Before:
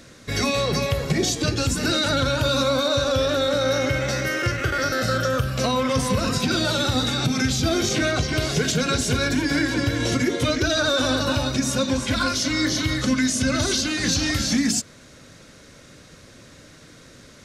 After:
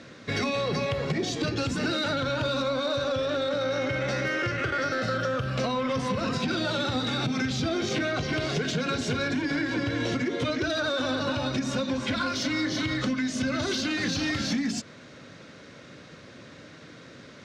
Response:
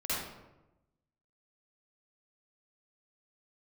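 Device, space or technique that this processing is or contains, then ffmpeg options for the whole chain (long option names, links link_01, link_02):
AM radio: -af "highpass=120,lowpass=3900,acompressor=threshold=-25dB:ratio=6,asoftclip=type=tanh:threshold=-19.5dB,volume=1.5dB"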